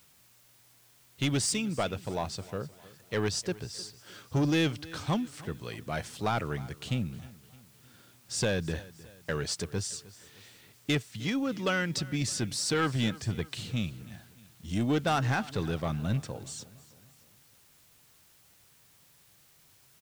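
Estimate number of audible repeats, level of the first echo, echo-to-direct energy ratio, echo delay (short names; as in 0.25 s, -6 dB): 3, -20.0 dB, -19.0 dB, 0.308 s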